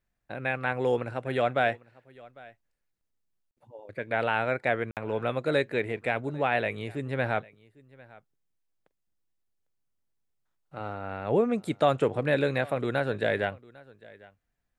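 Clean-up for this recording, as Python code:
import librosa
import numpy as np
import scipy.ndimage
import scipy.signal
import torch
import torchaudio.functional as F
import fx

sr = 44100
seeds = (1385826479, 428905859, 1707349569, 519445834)

y = fx.fix_interpolate(x, sr, at_s=(3.51, 4.91), length_ms=58.0)
y = fx.fix_echo_inverse(y, sr, delay_ms=801, level_db=-23.0)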